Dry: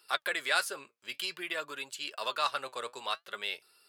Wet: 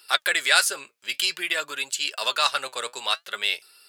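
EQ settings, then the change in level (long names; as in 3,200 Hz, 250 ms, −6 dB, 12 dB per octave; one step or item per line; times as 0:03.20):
dynamic equaliser 7,200 Hz, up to +5 dB, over −53 dBFS, Q 1.3
tilt shelving filter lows −4.5 dB, about 800 Hz
parametric band 1,100 Hz −4 dB 0.41 octaves
+7.0 dB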